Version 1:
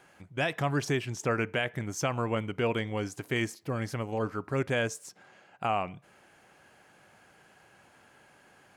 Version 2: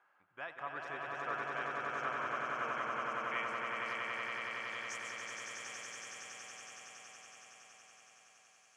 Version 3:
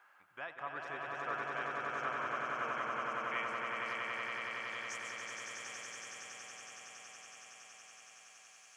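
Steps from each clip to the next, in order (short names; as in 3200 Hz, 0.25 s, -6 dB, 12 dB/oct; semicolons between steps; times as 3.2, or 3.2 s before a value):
band-pass sweep 1200 Hz -> 6400 Hz, 2.39–5.09; swelling echo 93 ms, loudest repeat 8, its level -3.5 dB; gain -6 dB
mismatched tape noise reduction encoder only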